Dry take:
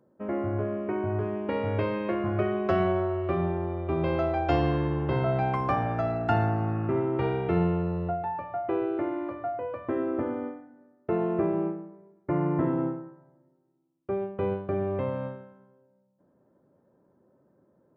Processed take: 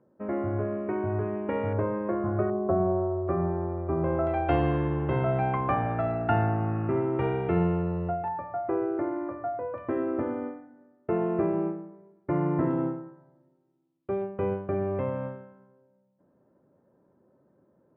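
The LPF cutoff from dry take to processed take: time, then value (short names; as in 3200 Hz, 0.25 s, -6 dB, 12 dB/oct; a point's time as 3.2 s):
LPF 24 dB/oct
2400 Hz
from 1.73 s 1500 Hz
from 2.5 s 1000 Hz
from 3.28 s 1600 Hz
from 4.27 s 2900 Hz
from 8.28 s 1900 Hz
from 9.78 s 2900 Hz
from 12.71 s 4100 Hz
from 14.22 s 2700 Hz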